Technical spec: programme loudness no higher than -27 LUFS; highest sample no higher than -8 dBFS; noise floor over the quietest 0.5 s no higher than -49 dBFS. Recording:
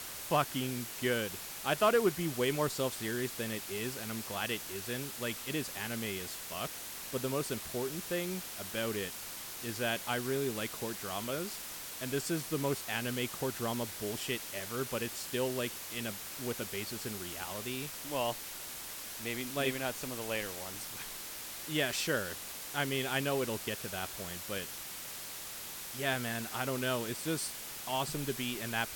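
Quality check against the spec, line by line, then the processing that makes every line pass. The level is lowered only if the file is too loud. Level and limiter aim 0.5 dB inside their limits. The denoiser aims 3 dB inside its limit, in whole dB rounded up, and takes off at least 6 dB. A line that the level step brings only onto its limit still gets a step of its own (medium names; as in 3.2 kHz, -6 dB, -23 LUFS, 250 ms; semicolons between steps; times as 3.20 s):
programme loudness -35.5 LUFS: pass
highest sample -17.5 dBFS: pass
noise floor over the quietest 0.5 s -44 dBFS: fail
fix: noise reduction 8 dB, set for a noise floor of -44 dBFS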